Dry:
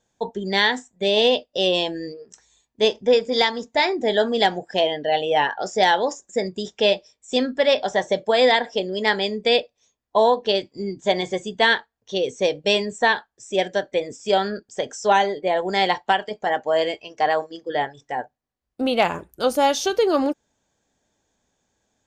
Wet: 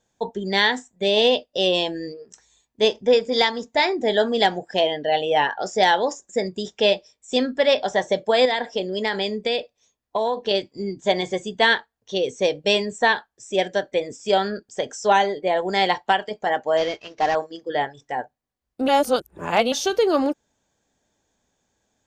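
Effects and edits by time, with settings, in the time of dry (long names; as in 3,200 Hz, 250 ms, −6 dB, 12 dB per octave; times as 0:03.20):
0:08.45–0:10.51: downward compressor, threshold −18 dBFS
0:16.77–0:17.35: variable-slope delta modulation 32 kbit/s
0:18.88–0:19.72: reverse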